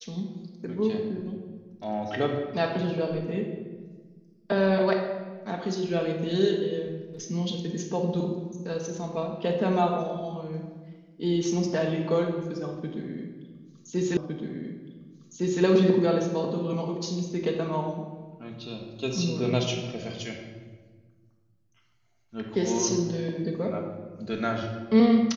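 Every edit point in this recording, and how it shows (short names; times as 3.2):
14.17 repeat of the last 1.46 s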